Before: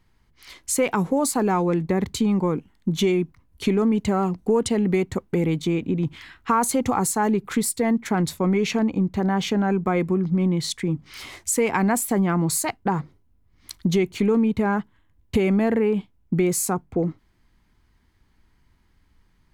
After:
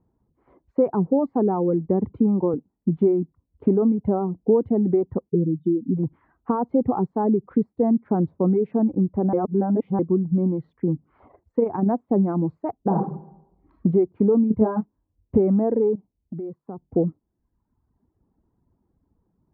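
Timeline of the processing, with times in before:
0:02.04–0:02.54: multiband upward and downward compressor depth 40%
0:05.29–0:05.97: expanding power law on the bin magnitudes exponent 2.5
0:09.33–0:09.99: reverse
0:11.27–0:11.88: amplitude modulation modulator 25 Hz, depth 30%
0:12.77–0:13.83: thrown reverb, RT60 0.95 s, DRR −2 dB
0:14.48–0:15.38: double-tracking delay 23 ms −2.5 dB
0:15.95–0:16.82: downward compressor 3 to 1, threshold −35 dBFS
whole clip: Bessel low-pass filter 530 Hz, order 4; reverb reduction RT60 0.95 s; high-pass filter 220 Hz 6 dB per octave; level +6 dB

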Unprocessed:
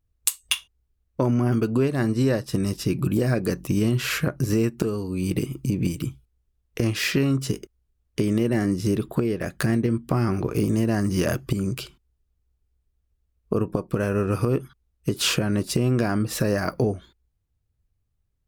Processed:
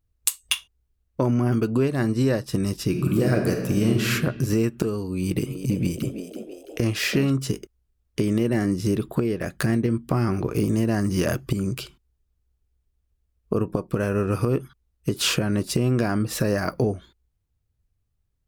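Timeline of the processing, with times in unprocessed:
0:02.88–0:04.06: thrown reverb, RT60 1.4 s, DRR 2.5 dB
0:05.14–0:07.30: echo with shifted repeats 332 ms, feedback 49%, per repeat +91 Hz, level −10 dB

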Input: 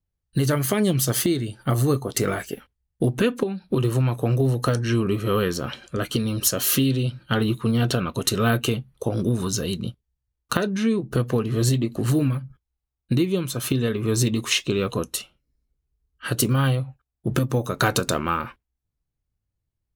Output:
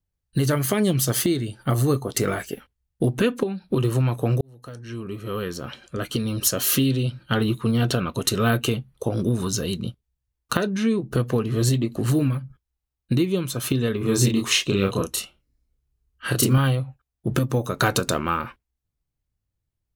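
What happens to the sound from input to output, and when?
0:04.41–0:06.52: fade in
0:13.98–0:16.58: double-tracking delay 31 ms −2.5 dB

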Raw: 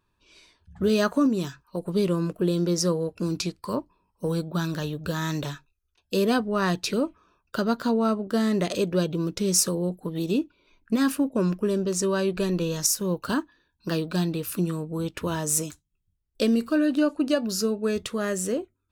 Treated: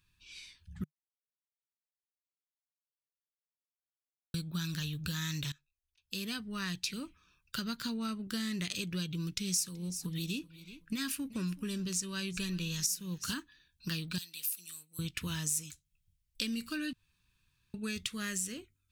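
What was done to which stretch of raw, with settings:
0:00.84–0:04.34: silence
0:05.52–0:08.47: fade in equal-power, from −22.5 dB
0:09.10–0:13.35: repeating echo 378 ms, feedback 25%, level −21 dB
0:14.18–0:14.99: first difference
0:16.93–0:17.74: fill with room tone
whole clip: drawn EQ curve 150 Hz 0 dB, 620 Hz −22 dB, 2,300 Hz +5 dB; downward compressor 3 to 1, threshold −35 dBFS

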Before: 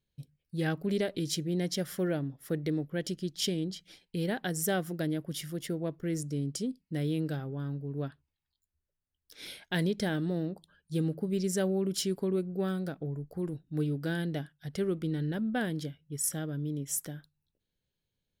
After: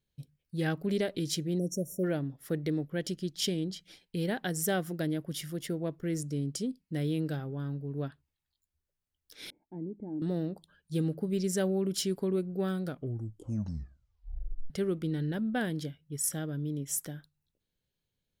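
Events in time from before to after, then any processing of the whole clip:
0:01.59–0:02.04: time-frequency box erased 700–5,500 Hz
0:09.50–0:10.22: formant resonators in series u
0:12.83: tape stop 1.87 s

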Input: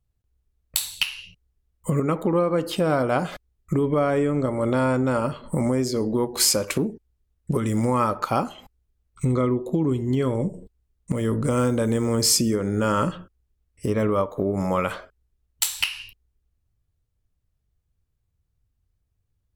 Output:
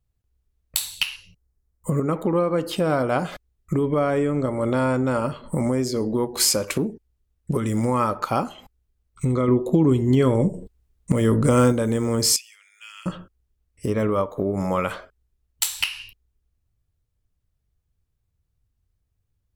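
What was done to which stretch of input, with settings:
0:01.16–0:02.13: parametric band 2,900 Hz −10.5 dB 0.91 octaves
0:09.48–0:11.72: clip gain +5 dB
0:12.36–0:13.06: four-pole ladder high-pass 2,300 Hz, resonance 65%

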